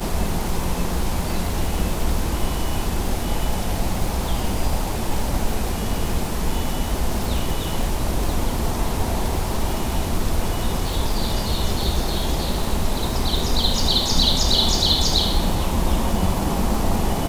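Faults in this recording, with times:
surface crackle 250 per second −27 dBFS

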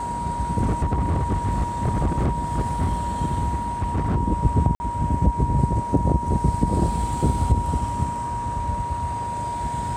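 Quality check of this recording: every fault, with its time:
whistle 950 Hz −26 dBFS
0:00.61–0:03.03: clipping −17.5 dBFS
0:03.53–0:04.17: clipping −19 dBFS
0:04.75–0:04.80: drop-out 50 ms

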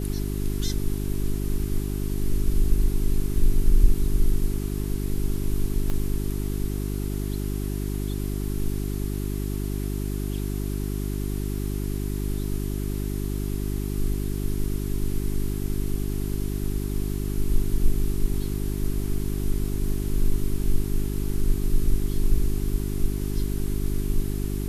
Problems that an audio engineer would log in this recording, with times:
mains hum 50 Hz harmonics 8 −28 dBFS
0:05.90: click −16 dBFS

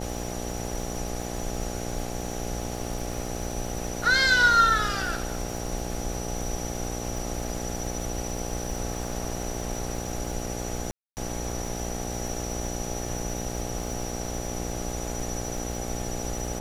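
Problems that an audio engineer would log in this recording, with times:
mains buzz 60 Hz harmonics 14 −34 dBFS
surface crackle 150 per second −37 dBFS
0:10.91–0:11.17: drop-out 259 ms

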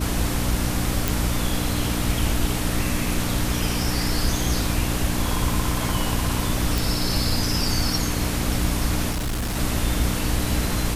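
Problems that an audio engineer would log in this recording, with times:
mains hum 60 Hz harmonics 5 −27 dBFS
0:01.08: click
0:06.78: click
0:09.11–0:09.57: clipping −22.5 dBFS

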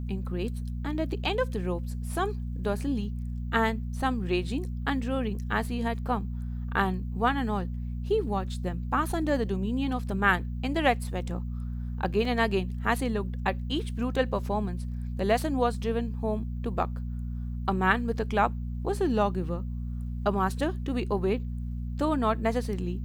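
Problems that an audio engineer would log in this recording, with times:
mains hum 60 Hz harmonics 4 −33 dBFS
0:12.25: drop-out 2.7 ms

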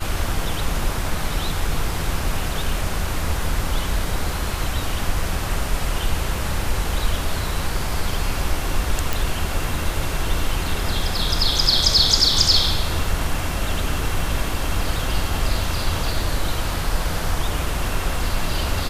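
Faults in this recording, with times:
0:09.13: click

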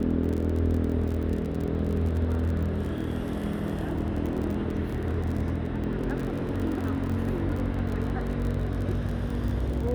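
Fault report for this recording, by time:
surface crackle 33 per second −31 dBFS

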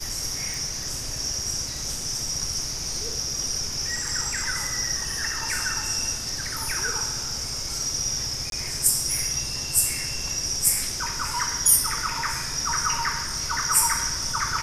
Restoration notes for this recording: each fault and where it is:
0:00.54: click
0:08.50–0:08.52: drop-out 22 ms

